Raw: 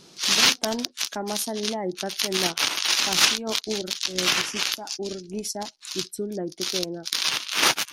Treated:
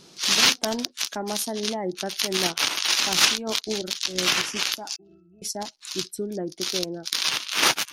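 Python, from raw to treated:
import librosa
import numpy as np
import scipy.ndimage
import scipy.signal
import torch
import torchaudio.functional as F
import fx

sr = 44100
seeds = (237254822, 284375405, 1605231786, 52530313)

y = fx.octave_resonator(x, sr, note='E', decay_s=0.47, at=(4.96, 5.42))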